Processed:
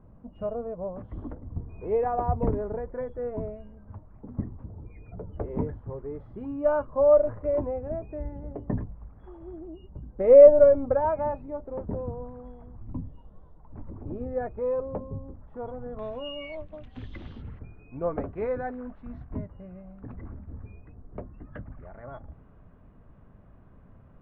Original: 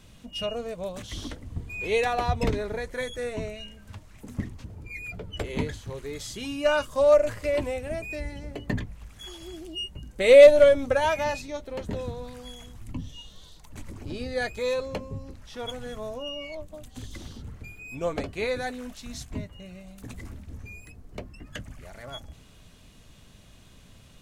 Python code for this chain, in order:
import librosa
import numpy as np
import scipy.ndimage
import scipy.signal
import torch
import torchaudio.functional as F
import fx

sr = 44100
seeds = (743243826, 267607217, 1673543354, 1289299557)

y = fx.lowpass(x, sr, hz=fx.steps((0.0, 1100.0), (15.99, 2800.0), (17.59, 1400.0)), slope=24)